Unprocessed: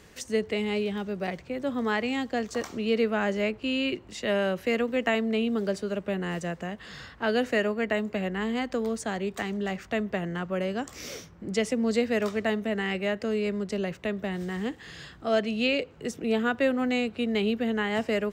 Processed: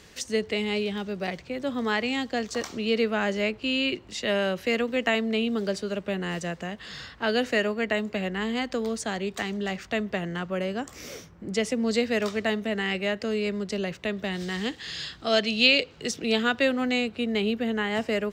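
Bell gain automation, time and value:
bell 4300 Hz 1.7 oct
10.44 s +6.5 dB
11.07 s -3.5 dB
11.92 s +6.5 dB
14.02 s +6.5 dB
14.49 s +14.5 dB
16.38 s +14.5 dB
17.21 s +3 dB

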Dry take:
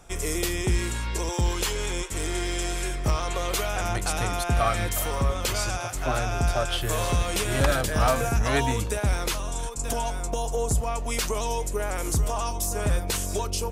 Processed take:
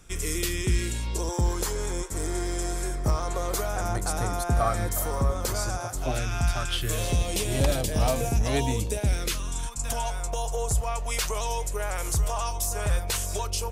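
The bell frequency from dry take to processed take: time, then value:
bell -13.5 dB 1 oct
0.72 s 730 Hz
1.36 s 2800 Hz
5.92 s 2800 Hz
6.41 s 410 Hz
7.24 s 1400 Hz
8.93 s 1400 Hz
10.11 s 260 Hz

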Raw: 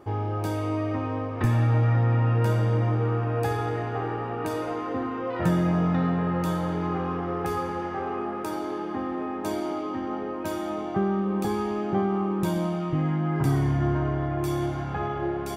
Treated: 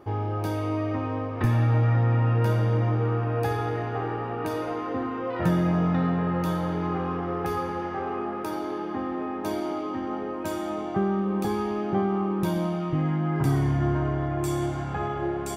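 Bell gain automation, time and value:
bell 7800 Hz 0.31 oct
9.49 s -8.5 dB
10.35 s +3 dB
11.06 s +3 dB
11.74 s -8 dB
12.53 s -8 dB
13.91 s +3 dB
14.55 s +12 dB

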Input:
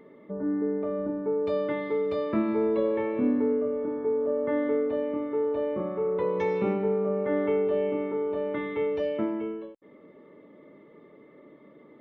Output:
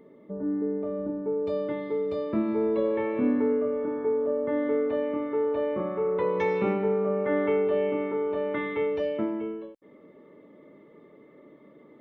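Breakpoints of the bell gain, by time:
bell 1800 Hz 2.2 oct
2.29 s -6.5 dB
3.33 s +5 dB
4.08 s +5 dB
4.51 s -3 dB
4.91 s +4.5 dB
8.68 s +4.5 dB
9.25 s -1.5 dB

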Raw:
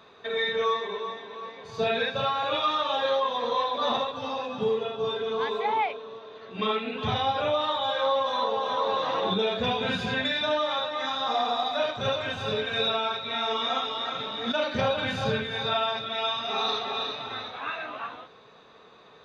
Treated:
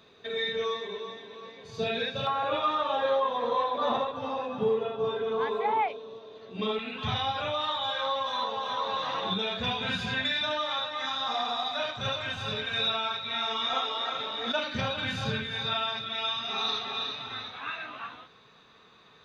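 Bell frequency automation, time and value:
bell -9.5 dB 1.8 oct
1000 Hz
from 2.27 s 5100 Hz
from 5.88 s 1500 Hz
from 6.79 s 430 Hz
from 13.73 s 150 Hz
from 14.59 s 560 Hz

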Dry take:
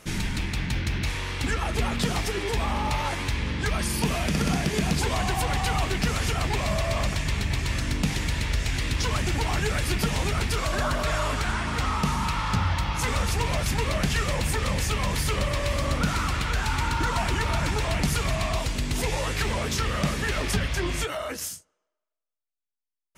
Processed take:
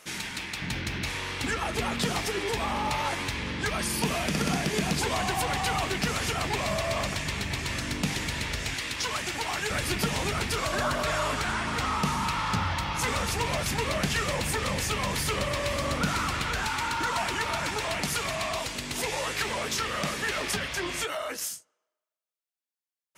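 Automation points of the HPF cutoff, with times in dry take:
HPF 6 dB/oct
720 Hz
from 0.62 s 200 Hz
from 8.74 s 670 Hz
from 9.7 s 170 Hz
from 16.67 s 440 Hz

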